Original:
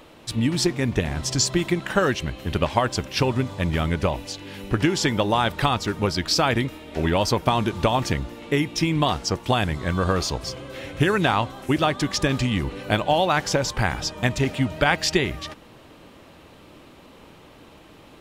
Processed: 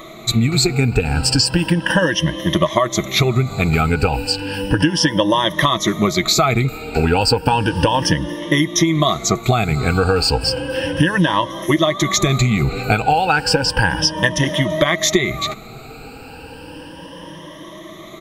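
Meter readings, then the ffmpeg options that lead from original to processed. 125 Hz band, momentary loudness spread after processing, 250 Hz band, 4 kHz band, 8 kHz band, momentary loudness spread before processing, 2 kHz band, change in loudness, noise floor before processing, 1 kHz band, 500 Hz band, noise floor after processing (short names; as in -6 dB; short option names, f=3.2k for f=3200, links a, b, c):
+6.5 dB, 20 LU, +6.0 dB, +8.0 dB, +7.5 dB, 7 LU, +7.0 dB, +6.0 dB, -48 dBFS, +5.5 dB, +5.5 dB, -37 dBFS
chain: -af "afftfilt=real='re*pow(10,19/40*sin(2*PI*(1.2*log(max(b,1)*sr/1024/100)/log(2)-(0.33)*(pts-256)/sr)))':imag='im*pow(10,19/40*sin(2*PI*(1.2*log(max(b,1)*sr/1024/100)/log(2)-(0.33)*(pts-256)/sr)))':win_size=1024:overlap=0.75,aecho=1:1:6.2:0.33,acompressor=threshold=-20dB:ratio=6,volume=8dB"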